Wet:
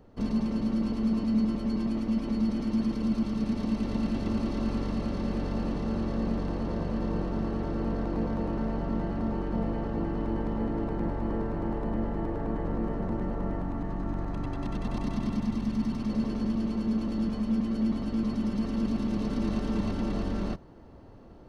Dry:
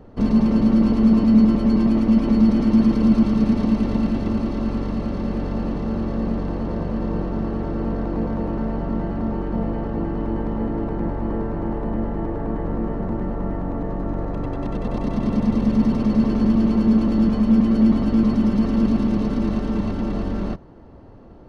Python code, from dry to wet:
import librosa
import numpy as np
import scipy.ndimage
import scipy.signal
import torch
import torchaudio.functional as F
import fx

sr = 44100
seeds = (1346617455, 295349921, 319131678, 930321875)

y = fx.high_shelf(x, sr, hz=3100.0, db=8.5)
y = fx.rider(y, sr, range_db=3, speed_s=0.5)
y = fx.peak_eq(y, sr, hz=500.0, db=-10.5, octaves=0.5, at=(13.63, 16.09))
y = F.gain(torch.from_numpy(y), -9.0).numpy()